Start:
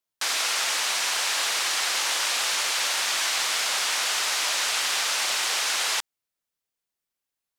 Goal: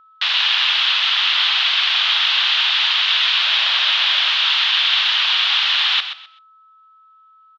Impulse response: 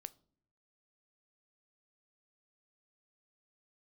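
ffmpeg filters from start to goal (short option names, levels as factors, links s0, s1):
-filter_complex "[0:a]aexciter=amount=4.4:drive=5.4:freq=2600,asettb=1/sr,asplit=3[s0][s1][s2];[s0]atrim=end=3.464[s3];[s1]atrim=start=3.46:end=4.27,asetpts=PTS-STARTPTS,afade=t=in:d=0.004:c=qsin,afade=t=out:st=0.806:d=0.004:c=qsin,aeval=exprs='0.891*(cos(1*acos(clip(val(0)/0.891,-1,1)))-cos(1*PI/2))+0.0398*(cos(2*acos(clip(val(0)/0.891,-1,1)))-cos(2*PI/2))+0.0447*(cos(4*acos(clip(val(0)/0.891,-1,1)))-cos(4*PI/2))':c=same[s4];[s2]atrim=start=4.266[s5];[s3][s4]acrossfade=d=0.004:c1=hsin:c2=qsin[s6];[s6][s5]acrossfade=d=0.004:c1=qsin:c2=hsin,highpass=f=210:t=q:w=0.5412,highpass=f=210:t=q:w=1.307,lowpass=f=3100:t=q:w=0.5176,lowpass=f=3100:t=q:w=0.7071,lowpass=f=3100:t=q:w=1.932,afreqshift=350,aecho=1:1:128|256|384:0.299|0.0687|0.0158,asplit=2[s7][s8];[1:a]atrim=start_sample=2205[s9];[s8][s9]afir=irnorm=-1:irlink=0,volume=2[s10];[s7][s10]amix=inputs=2:normalize=0,aeval=exprs='val(0)+0.00398*sin(2*PI*1300*n/s)':c=same"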